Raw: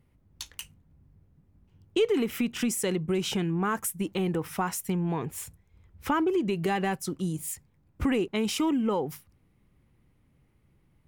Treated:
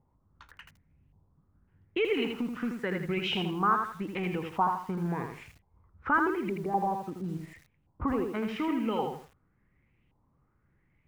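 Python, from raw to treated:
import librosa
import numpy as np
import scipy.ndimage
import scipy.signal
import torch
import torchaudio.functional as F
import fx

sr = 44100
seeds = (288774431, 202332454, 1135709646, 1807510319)

y = fx.cheby1_bandstop(x, sr, low_hz=800.0, high_hz=9500.0, order=2, at=(6.49, 7.26))
y = fx.filter_lfo_lowpass(y, sr, shape='saw_up', hz=0.89, low_hz=860.0, high_hz=2900.0, q=4.5)
y = fx.echo_crushed(y, sr, ms=81, feedback_pct=35, bits=8, wet_db=-5)
y = F.gain(torch.from_numpy(y), -5.5).numpy()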